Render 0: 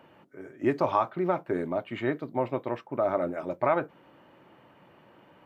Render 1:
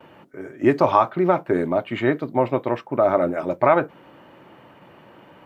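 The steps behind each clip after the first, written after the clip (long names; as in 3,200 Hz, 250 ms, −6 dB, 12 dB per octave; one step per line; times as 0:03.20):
noise gate with hold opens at −49 dBFS
level +8.5 dB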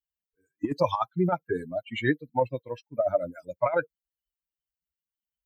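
spectral dynamics exaggerated over time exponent 3
compressor whose output falls as the input rises −23 dBFS, ratio −0.5
level +1 dB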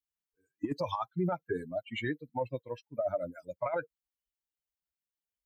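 brickwall limiter −18.5 dBFS, peak gain reduction 8.5 dB
level −4 dB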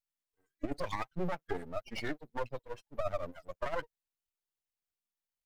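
half-wave rectification
level +1.5 dB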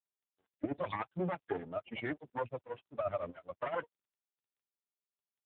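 low-pass that shuts in the quiet parts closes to 2,400 Hz, open at −32.5 dBFS
level +1 dB
AMR narrowband 7.95 kbit/s 8,000 Hz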